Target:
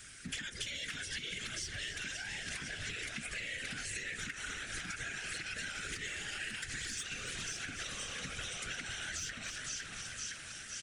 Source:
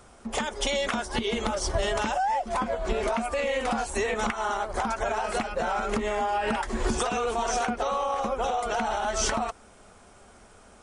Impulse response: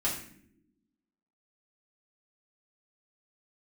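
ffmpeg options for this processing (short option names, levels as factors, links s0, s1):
-filter_complex "[0:a]asettb=1/sr,asplit=3[s0][s1][s2];[s0]atrim=end=5.464[s3];[s1]atrim=start=5.46:end=7.14,asetpts=PTS-STARTPTS,afade=t=in:d=0.004:c=qsin,afade=t=out:st=1.676:d=0.004:c=qsin,highshelf=f=3400:g=9[s4];[s2]atrim=start=7.136[s5];[s3][s4]acrossfade=d=0.004:c1=hsin:c2=qsin[s6];[s6][s5]acrossfade=d=0.004:c1=qsin:c2=hsin,aecho=1:1:509|1018|1527|2036|2545|3054:0.2|0.116|0.0671|0.0389|0.0226|0.0131,asoftclip=type=tanh:threshold=0.119,acrossover=split=500|1200|7200[s7][s8][s9][s10];[s7]acompressor=threshold=0.0224:ratio=4[s11];[s8]acompressor=threshold=0.00794:ratio=4[s12];[s9]acompressor=threshold=0.00891:ratio=4[s13];[s10]acompressor=threshold=0.00178:ratio=4[s14];[s11][s12][s13][s14]amix=inputs=4:normalize=0,asplit=8[s15][s16][s17][s18][s19][s20][s21][s22];[s16]adelay=282,afreqshift=-70,volume=0.251[s23];[s17]adelay=564,afreqshift=-140,volume=0.155[s24];[s18]adelay=846,afreqshift=-210,volume=0.0966[s25];[s19]adelay=1128,afreqshift=-280,volume=0.0596[s26];[s20]adelay=1410,afreqshift=-350,volume=0.0372[s27];[s21]adelay=1692,afreqshift=-420,volume=0.0229[s28];[s22]adelay=1974,afreqshift=-490,volume=0.0143[s29];[s15][s23][s24][s25][s26][s27][s28][s29]amix=inputs=8:normalize=0,afftfilt=real='hypot(re,im)*cos(2*PI*random(0))':imag='hypot(re,im)*sin(2*PI*random(1))':win_size=512:overlap=0.75,firequalizer=gain_entry='entry(130,0);entry(590,-12);entry(940,-17);entry(1600,14)':delay=0.05:min_phase=1,acompressor=threshold=0.0126:ratio=6"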